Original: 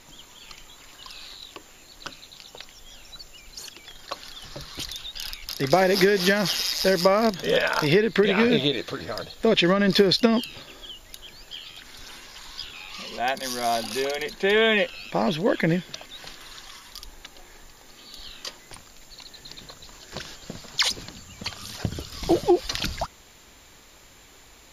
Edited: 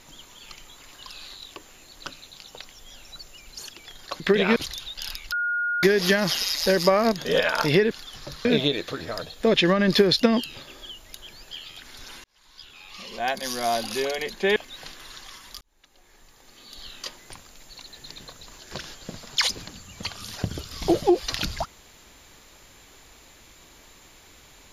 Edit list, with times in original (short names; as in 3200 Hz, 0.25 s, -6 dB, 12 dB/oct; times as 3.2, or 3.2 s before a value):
4.2–4.74 swap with 8.09–8.45
5.5–6.01 bleep 1430 Hz -22.5 dBFS
12.24–13.38 fade in
14.56–15.97 cut
17.02–18.31 fade in